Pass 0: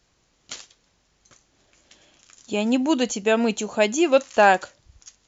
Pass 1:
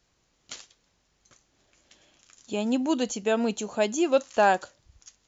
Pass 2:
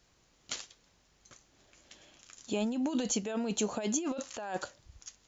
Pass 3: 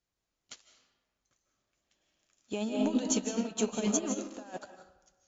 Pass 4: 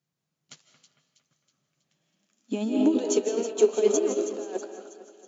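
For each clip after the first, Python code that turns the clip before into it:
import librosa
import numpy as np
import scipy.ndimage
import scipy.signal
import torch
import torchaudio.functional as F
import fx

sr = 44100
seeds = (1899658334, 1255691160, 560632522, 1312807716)

y1 = fx.dynamic_eq(x, sr, hz=2200.0, q=1.9, threshold_db=-38.0, ratio=4.0, max_db=-6)
y1 = y1 * 10.0 ** (-4.5 / 20.0)
y2 = fx.over_compress(y1, sr, threshold_db=-30.0, ratio=-1.0)
y2 = y2 * 10.0 ** (-3.0 / 20.0)
y3 = fx.rev_freeverb(y2, sr, rt60_s=1.3, hf_ratio=0.6, predelay_ms=115, drr_db=1.5)
y3 = fx.upward_expand(y3, sr, threshold_db=-42.0, expansion=2.5)
y3 = y3 * 10.0 ** (3.5 / 20.0)
y4 = fx.echo_split(y3, sr, split_hz=2700.0, low_ms=227, high_ms=322, feedback_pct=52, wet_db=-11)
y4 = fx.filter_sweep_highpass(y4, sr, from_hz=150.0, to_hz=390.0, start_s=1.97, end_s=3.08, q=7.9)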